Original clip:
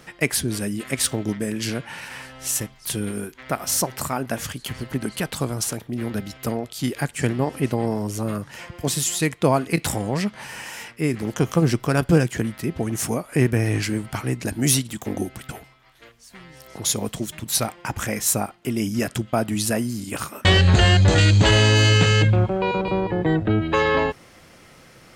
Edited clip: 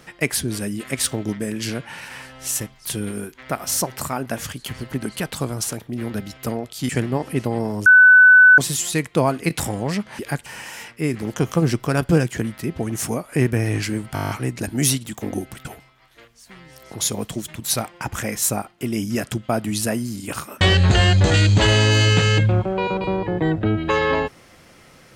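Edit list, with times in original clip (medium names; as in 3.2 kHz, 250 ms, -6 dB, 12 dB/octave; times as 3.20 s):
6.89–7.16 s: move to 10.46 s
8.13–8.85 s: bleep 1.5 kHz -6 dBFS
14.14 s: stutter 0.02 s, 9 plays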